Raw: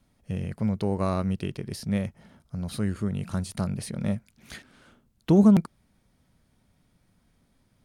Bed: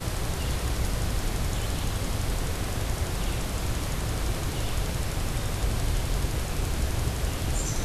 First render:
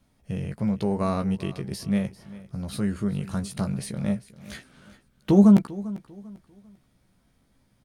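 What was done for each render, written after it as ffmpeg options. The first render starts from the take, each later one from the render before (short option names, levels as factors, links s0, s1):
-filter_complex "[0:a]asplit=2[s0][s1];[s1]adelay=15,volume=0.501[s2];[s0][s2]amix=inputs=2:normalize=0,aecho=1:1:396|792|1188:0.126|0.039|0.0121"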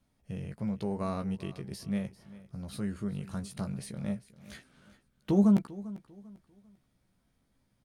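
-af "volume=0.398"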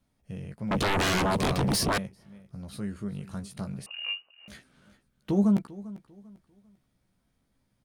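-filter_complex "[0:a]asettb=1/sr,asplit=3[s0][s1][s2];[s0]atrim=end=0.714[s3];[s1]atrim=start=0.71:end=1.98,asetpts=PTS-STARTPTS,afade=t=in:d=0.004:c=qsin,afade=t=out:st=1.266:d=0.004:c=qsin,aeval=exprs='0.0794*sin(PI/2*7.94*val(0)/0.0794)':c=same[s4];[s2]atrim=start=1.976[s5];[s3][s4]acrossfade=d=0.004:c1=hsin:c2=qsin[s6];[s6][s5]acrossfade=d=0.004:c1=qsin:c2=hsin,asettb=1/sr,asplit=3[s7][s8][s9];[s7]atrim=end=3.864[s10];[s8]atrim=start=3.86:end=4.48,asetpts=PTS-STARTPTS,afade=t=in:d=0.004:c=qsin,afade=t=out:st=0.616:d=0.004:c=qsin,lowpass=f=2600:t=q:w=0.5098,lowpass=f=2600:t=q:w=0.6013,lowpass=f=2600:t=q:w=0.9,lowpass=f=2600:t=q:w=2.563,afreqshift=-3000[s11];[s9]atrim=start=4.476[s12];[s10][s11]acrossfade=d=0.004:c1=hsin:c2=qsin[s13];[s13][s12]acrossfade=d=0.004:c1=qsin:c2=hsin"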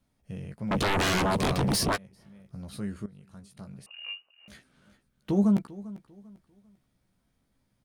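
-filter_complex "[0:a]asplit=3[s0][s1][s2];[s0]afade=t=out:st=1.95:d=0.02[s3];[s1]acompressor=threshold=0.00447:ratio=5:attack=3.2:release=140:knee=1:detection=peak,afade=t=in:st=1.95:d=0.02,afade=t=out:st=2.44:d=0.02[s4];[s2]afade=t=in:st=2.44:d=0.02[s5];[s3][s4][s5]amix=inputs=3:normalize=0,asplit=2[s6][s7];[s6]atrim=end=3.06,asetpts=PTS-STARTPTS,afade=t=out:st=3.056:d=0.004:c=hsin:silence=0.149624[s8];[s7]atrim=start=3.06,asetpts=PTS-STARTPTS,afade=t=in:d=2.3:silence=0.149624[s9];[s8][s9]concat=n=2:v=0:a=1"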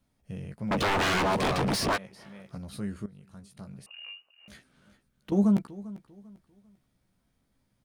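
-filter_complex "[0:a]asettb=1/sr,asplit=3[s0][s1][s2];[s0]atrim=end=0.724[s3];[s1]atrim=start=0.72:end=2.58,asetpts=PTS-STARTPTS,afade=t=in:d=0.004:c=qsin,afade=t=out:st=1.856:d=0.004:c=qsin,asplit=2[s4][s5];[s5]highpass=f=720:p=1,volume=10,asoftclip=type=tanh:threshold=0.0841[s6];[s4][s6]amix=inputs=2:normalize=0,lowpass=f=3500:p=1,volume=0.501[s7];[s2]atrim=start=2.576[s8];[s3][s7]acrossfade=d=0.004:c1=hsin:c2=qsin[s9];[s9][s8]acrossfade=d=0.004:c1=qsin:c2=hsin,asettb=1/sr,asplit=3[s10][s11][s12];[s10]atrim=end=3.914[s13];[s11]atrim=start=3.91:end=5.32,asetpts=PTS-STARTPTS,afade=t=in:d=0.004:c=qsin,afade=t=out:st=1.406:d=0.004:c=qsin,acompressor=threshold=0.00891:ratio=3:attack=3.2:release=140:knee=1:detection=peak[s14];[s12]atrim=start=5.316[s15];[s13][s14]acrossfade=d=0.004:c1=hsin:c2=qsin[s16];[s16][s15]acrossfade=d=0.004:c1=qsin:c2=hsin"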